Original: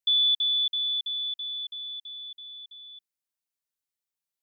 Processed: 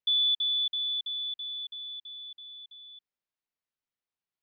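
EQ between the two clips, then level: distance through air 190 m; +1.5 dB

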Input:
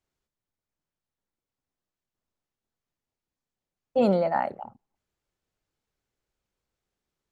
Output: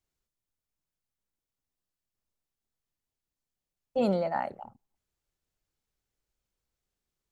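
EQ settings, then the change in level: bass shelf 84 Hz +8.5 dB; treble shelf 3.8 kHz +7 dB; -5.5 dB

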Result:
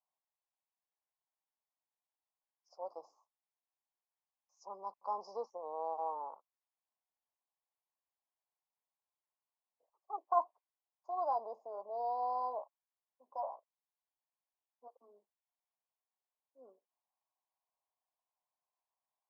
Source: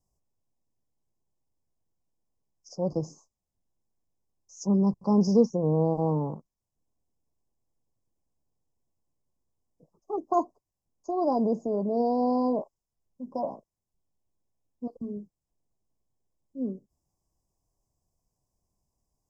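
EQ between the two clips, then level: high-pass 790 Hz 24 dB/octave; dynamic bell 3.1 kHz, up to +7 dB, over -57 dBFS, Q 0.72; distance through air 490 m; 0.0 dB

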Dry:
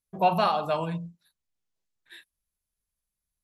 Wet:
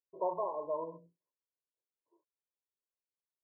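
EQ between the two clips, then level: high-pass 310 Hz 12 dB/octave; brick-wall FIR low-pass 1.1 kHz; static phaser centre 770 Hz, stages 6; -3.5 dB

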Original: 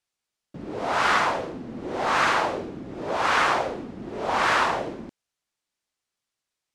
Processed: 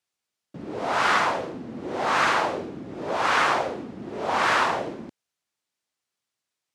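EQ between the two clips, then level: high-pass 84 Hz; 0.0 dB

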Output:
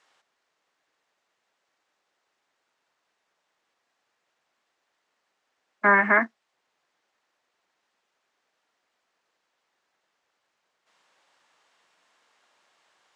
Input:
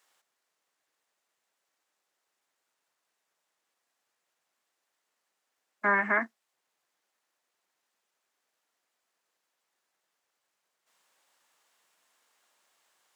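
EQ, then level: distance through air 100 m; +7.5 dB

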